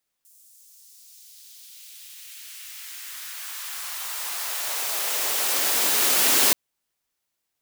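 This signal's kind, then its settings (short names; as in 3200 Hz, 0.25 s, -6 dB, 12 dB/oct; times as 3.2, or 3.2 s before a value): swept filtered noise white, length 6.28 s highpass, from 8100 Hz, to 230 Hz, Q 1.2, exponential, gain ramp +37 dB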